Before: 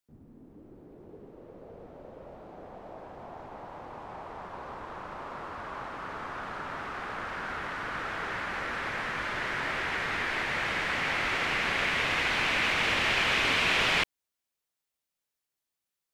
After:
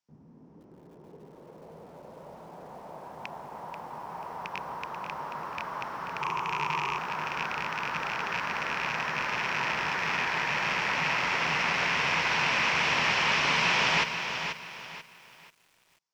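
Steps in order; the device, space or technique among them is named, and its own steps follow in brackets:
0:06.21–0:06.98: EQ curve with evenly spaced ripples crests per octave 0.72, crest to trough 15 dB
car door speaker with a rattle (loose part that buzzes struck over −44 dBFS, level −18 dBFS; loudspeaker in its box 84–6,900 Hz, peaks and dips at 97 Hz −9 dB, 160 Hz +7 dB, 310 Hz −4 dB, 950 Hz +8 dB, 3,700 Hz −3 dB, 5,500 Hz +8 dB)
feedback echo at a low word length 487 ms, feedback 35%, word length 9 bits, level −7.5 dB
level −1 dB

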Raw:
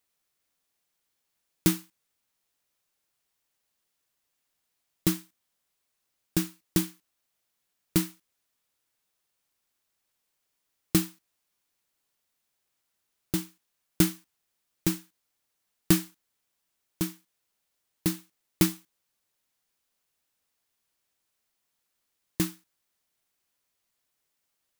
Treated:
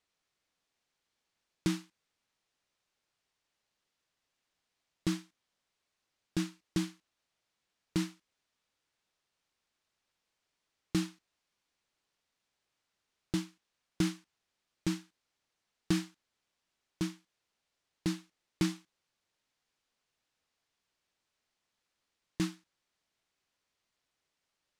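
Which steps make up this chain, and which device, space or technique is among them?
clipper into limiter (hard clipping −10.5 dBFS, distortion −23 dB; brickwall limiter −18 dBFS, peak gain reduction 7.5 dB)
low-pass filter 5,800 Hz 12 dB per octave

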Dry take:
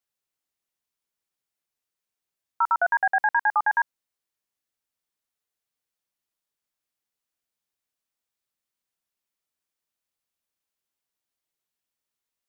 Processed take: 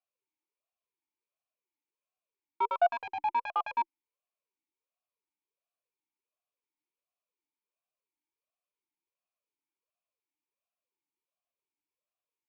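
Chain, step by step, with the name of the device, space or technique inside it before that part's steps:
talk box (tube saturation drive 20 dB, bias 0.3; formant filter swept between two vowels a-u 1.4 Hz)
level +7.5 dB

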